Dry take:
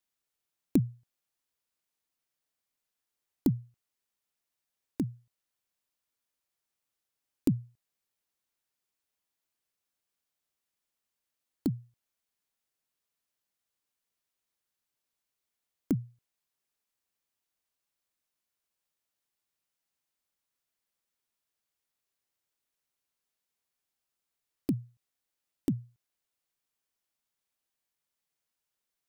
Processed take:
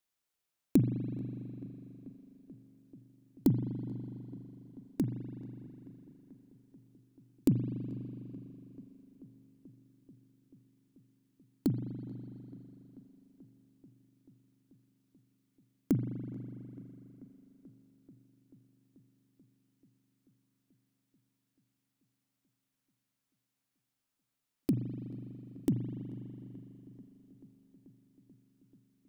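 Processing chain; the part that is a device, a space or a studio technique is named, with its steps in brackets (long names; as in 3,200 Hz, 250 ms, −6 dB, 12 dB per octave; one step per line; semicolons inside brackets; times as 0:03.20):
dub delay into a spring reverb (feedback echo with a low-pass in the loop 436 ms, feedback 78%, low-pass 2,100 Hz, level −21.5 dB; spring reverb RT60 3.5 s, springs 41 ms, chirp 80 ms, DRR 6 dB)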